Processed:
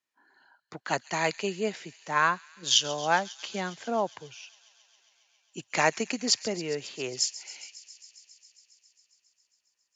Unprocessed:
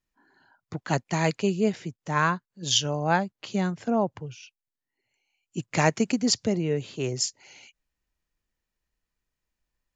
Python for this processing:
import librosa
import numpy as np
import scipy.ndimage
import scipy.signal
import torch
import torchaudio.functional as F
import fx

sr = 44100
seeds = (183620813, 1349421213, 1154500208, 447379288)

y = fx.weighting(x, sr, curve='A')
y = fx.echo_wet_highpass(y, sr, ms=136, feedback_pct=81, hz=3300.0, wet_db=-15)